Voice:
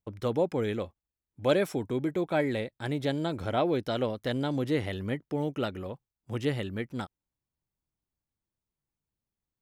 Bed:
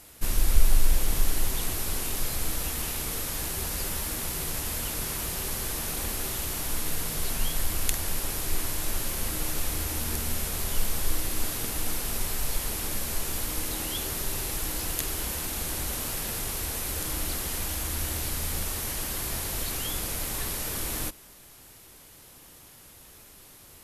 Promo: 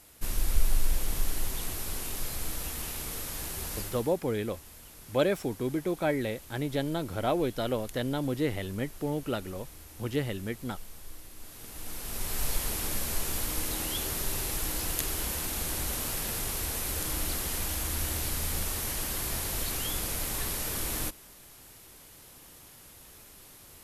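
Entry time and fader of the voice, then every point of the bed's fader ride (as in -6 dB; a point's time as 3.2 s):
3.70 s, -1.0 dB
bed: 3.79 s -5 dB
4.21 s -18.5 dB
11.38 s -18.5 dB
12.42 s -1 dB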